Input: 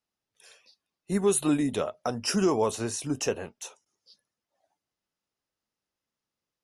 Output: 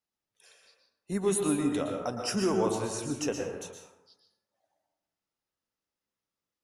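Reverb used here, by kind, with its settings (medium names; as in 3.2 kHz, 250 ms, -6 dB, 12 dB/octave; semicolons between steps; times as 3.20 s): plate-style reverb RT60 0.94 s, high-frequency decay 0.45×, pre-delay 105 ms, DRR 2.5 dB; trim -4.5 dB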